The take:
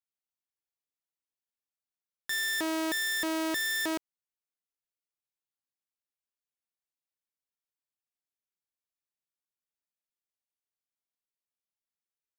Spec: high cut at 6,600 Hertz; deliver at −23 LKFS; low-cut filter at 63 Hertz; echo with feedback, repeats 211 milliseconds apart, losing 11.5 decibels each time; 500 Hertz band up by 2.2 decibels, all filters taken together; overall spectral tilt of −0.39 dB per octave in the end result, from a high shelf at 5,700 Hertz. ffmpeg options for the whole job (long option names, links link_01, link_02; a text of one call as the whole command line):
ffmpeg -i in.wav -af "highpass=63,lowpass=6600,equalizer=frequency=500:width_type=o:gain=3.5,highshelf=frequency=5700:gain=4.5,aecho=1:1:211|422|633:0.266|0.0718|0.0194,volume=6.5dB" out.wav